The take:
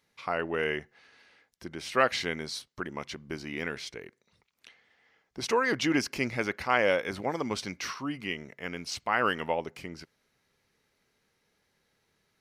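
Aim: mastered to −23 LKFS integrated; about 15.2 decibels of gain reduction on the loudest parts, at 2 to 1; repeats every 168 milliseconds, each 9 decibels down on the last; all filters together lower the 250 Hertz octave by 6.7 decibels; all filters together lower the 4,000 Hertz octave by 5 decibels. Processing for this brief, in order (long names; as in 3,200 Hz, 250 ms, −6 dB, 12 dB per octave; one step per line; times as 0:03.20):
parametric band 250 Hz −9 dB
parametric band 4,000 Hz −7 dB
downward compressor 2 to 1, threshold −49 dBFS
repeating echo 168 ms, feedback 35%, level −9 dB
level +21.5 dB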